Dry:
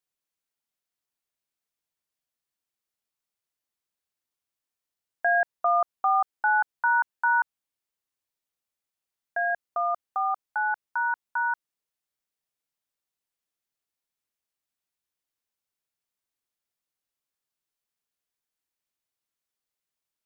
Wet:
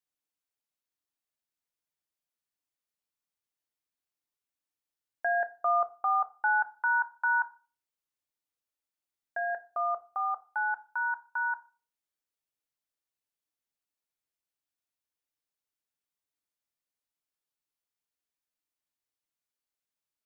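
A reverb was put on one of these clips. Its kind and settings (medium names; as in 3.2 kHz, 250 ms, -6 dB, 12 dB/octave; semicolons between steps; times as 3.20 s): FDN reverb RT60 0.36 s, low-frequency decay 1.25×, high-frequency decay 0.65×, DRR 10 dB; trim -5 dB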